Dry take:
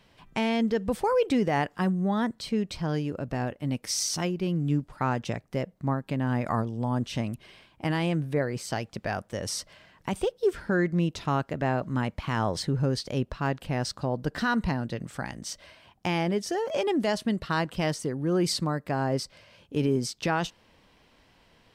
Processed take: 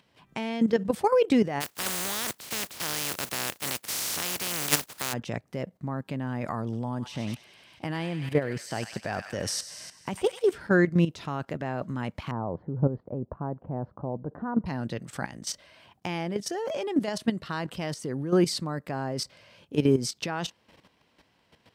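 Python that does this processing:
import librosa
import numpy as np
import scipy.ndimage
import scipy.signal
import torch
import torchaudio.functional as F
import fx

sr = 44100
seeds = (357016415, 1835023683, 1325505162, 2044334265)

y = fx.spec_flatten(x, sr, power=0.18, at=(1.6, 5.12), fade=0.02)
y = fx.echo_wet_highpass(y, sr, ms=99, feedback_pct=62, hz=1500.0, wet_db=-6.5, at=(6.63, 10.58))
y = fx.lowpass(y, sr, hz=1000.0, slope=24, at=(12.31, 14.66))
y = fx.level_steps(y, sr, step_db=12)
y = scipy.signal.sosfilt(scipy.signal.butter(2, 84.0, 'highpass', fs=sr, output='sos'), y)
y = y * 10.0 ** (5.0 / 20.0)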